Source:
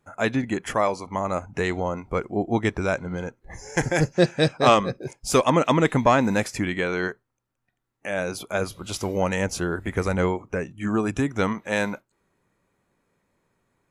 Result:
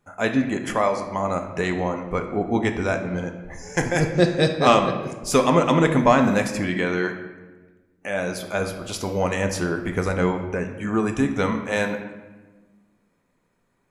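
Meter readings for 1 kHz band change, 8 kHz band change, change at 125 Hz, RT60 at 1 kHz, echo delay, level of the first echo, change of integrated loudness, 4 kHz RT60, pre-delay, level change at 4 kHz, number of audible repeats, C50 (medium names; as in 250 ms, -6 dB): +1.5 dB, +0.5 dB, +1.5 dB, 1.2 s, no echo, no echo, +1.5 dB, 0.80 s, 4 ms, +1.0 dB, no echo, 8.0 dB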